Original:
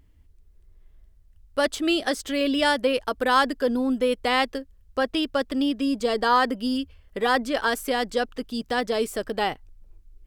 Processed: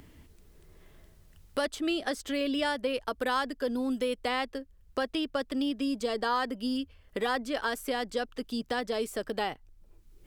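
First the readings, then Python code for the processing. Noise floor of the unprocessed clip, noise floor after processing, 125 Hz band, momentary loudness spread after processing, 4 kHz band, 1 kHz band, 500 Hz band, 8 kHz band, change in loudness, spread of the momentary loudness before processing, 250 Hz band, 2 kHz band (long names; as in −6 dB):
−56 dBFS, −59 dBFS, can't be measured, 6 LU, −7.5 dB, −8.5 dB, −7.0 dB, −7.0 dB, −7.5 dB, 8 LU, −6.5 dB, −8.0 dB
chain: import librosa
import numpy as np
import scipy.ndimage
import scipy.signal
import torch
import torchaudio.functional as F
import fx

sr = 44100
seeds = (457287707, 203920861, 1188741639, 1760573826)

y = fx.band_squash(x, sr, depth_pct=70)
y = F.gain(torch.from_numpy(y), -7.5).numpy()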